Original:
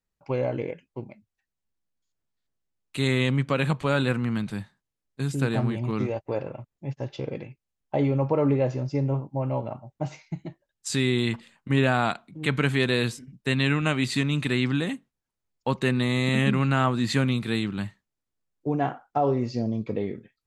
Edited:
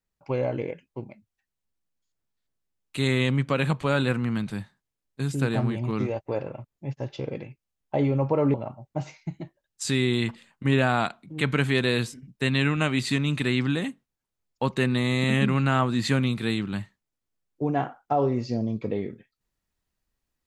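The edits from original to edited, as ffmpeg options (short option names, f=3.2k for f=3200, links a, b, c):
-filter_complex "[0:a]asplit=2[a][b];[a]atrim=end=8.542[c];[b]atrim=start=9.588[d];[c][d]acrossfade=d=0.004:c1=hsin:c2=hsin"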